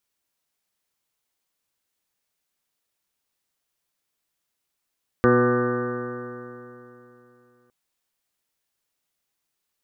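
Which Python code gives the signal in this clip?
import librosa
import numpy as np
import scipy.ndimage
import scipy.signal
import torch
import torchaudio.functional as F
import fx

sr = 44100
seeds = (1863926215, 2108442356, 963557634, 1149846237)

y = fx.additive_stiff(sr, length_s=2.46, hz=121.0, level_db=-23, upper_db=(4, 4.5, 5, -13, -10.5, -13.0, -14.0, 1, -12.5, -2.5, -13.0, -12.0), decay_s=3.12, stiffness=0.0023)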